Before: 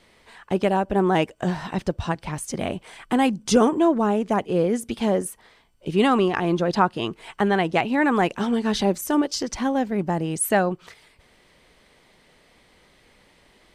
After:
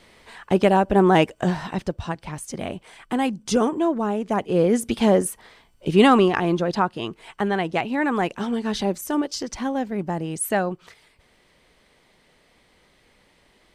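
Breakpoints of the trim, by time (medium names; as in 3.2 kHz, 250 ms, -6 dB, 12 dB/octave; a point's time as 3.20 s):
1.31 s +4 dB
2.01 s -3 dB
4.18 s -3 dB
4.79 s +4.5 dB
6.08 s +4.5 dB
6.84 s -2.5 dB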